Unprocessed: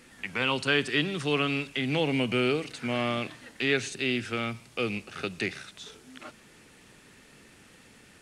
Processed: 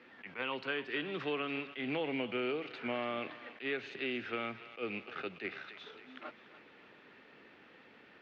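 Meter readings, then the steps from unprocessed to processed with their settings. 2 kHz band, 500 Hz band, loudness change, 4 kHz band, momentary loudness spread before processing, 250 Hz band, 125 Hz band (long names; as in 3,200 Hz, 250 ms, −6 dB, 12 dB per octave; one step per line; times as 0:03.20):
−9.0 dB, −8.0 dB, −10.0 dB, −12.0 dB, 18 LU, −10.0 dB, −17.5 dB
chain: high-pass filter 70 Hz
three-way crossover with the lows and the highs turned down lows −15 dB, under 260 Hz, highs −21 dB, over 4,400 Hz
downward compressor 6 to 1, threshold −31 dBFS, peak gain reduction 10 dB
high-frequency loss of the air 210 metres
feedback echo with a high-pass in the loop 288 ms, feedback 59%, high-pass 750 Hz, level −14 dB
level that may rise only so fast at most 250 dB per second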